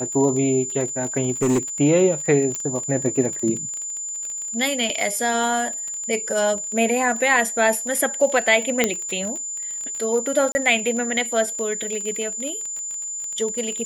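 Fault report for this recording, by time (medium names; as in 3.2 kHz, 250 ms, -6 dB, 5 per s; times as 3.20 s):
crackle 25 per s -26 dBFS
whine 7.1 kHz -27 dBFS
1.42–1.59 s: clipped -15 dBFS
2.55 s: pop
8.84 s: pop -3 dBFS
10.52–10.55 s: dropout 30 ms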